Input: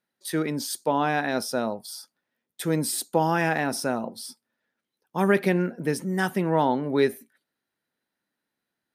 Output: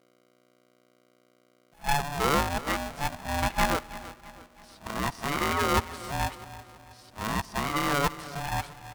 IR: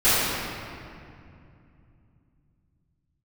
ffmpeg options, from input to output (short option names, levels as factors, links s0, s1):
-filter_complex "[0:a]areverse,aemphasis=mode=production:type=riaa,agate=range=0.0224:threshold=0.00891:ratio=3:detection=peak,lowpass=1300,aeval=exprs='val(0)+0.001*(sin(2*PI*60*n/s)+sin(2*PI*2*60*n/s)/2+sin(2*PI*3*60*n/s)/3+sin(2*PI*4*60*n/s)/4+sin(2*PI*5*60*n/s)/5)':c=same,highpass=82,aecho=1:1:327|654|981|1308:0.15|0.0688|0.0317|0.0146,asplit=2[s0][s1];[1:a]atrim=start_sample=2205[s2];[s1][s2]afir=irnorm=-1:irlink=0,volume=0.01[s3];[s0][s3]amix=inputs=2:normalize=0,aeval=exprs='val(0)*sgn(sin(2*PI*430*n/s))':c=same"